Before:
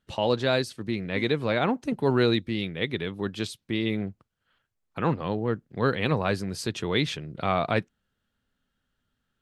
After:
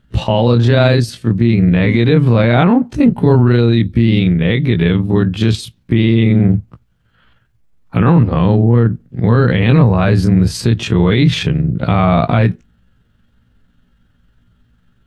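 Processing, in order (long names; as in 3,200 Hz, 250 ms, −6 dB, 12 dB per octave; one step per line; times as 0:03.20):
time stretch by overlap-add 1.6×, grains 91 ms
bass and treble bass +12 dB, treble −6 dB
boost into a limiter +17 dB
level −1 dB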